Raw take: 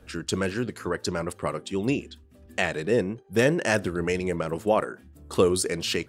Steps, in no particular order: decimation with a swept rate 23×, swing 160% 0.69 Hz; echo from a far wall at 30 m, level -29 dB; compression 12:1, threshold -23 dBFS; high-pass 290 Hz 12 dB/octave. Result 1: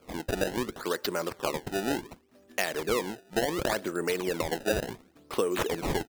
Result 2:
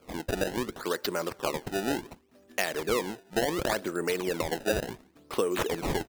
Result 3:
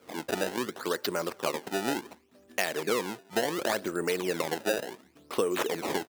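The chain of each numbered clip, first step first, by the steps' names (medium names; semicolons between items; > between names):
high-pass > compression > echo from a far wall > decimation with a swept rate; high-pass > decimation with a swept rate > compression > echo from a far wall; decimation with a swept rate > high-pass > compression > echo from a far wall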